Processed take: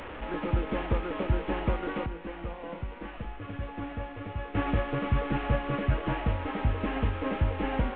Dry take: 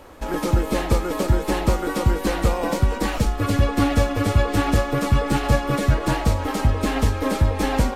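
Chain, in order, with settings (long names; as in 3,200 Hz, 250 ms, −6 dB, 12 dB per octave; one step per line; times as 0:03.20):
linear delta modulator 16 kbit/s, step −26 dBFS
0:02.06–0:04.55: tuned comb filter 170 Hz, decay 0.52 s, harmonics all, mix 70%
level −8.5 dB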